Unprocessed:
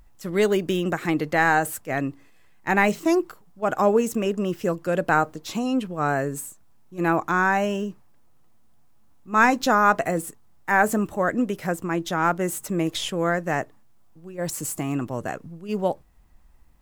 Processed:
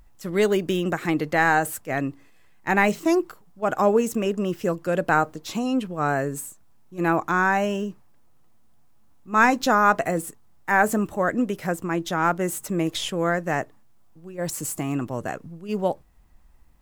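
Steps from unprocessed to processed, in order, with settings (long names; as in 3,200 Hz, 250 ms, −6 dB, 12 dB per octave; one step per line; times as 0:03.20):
no processing that can be heard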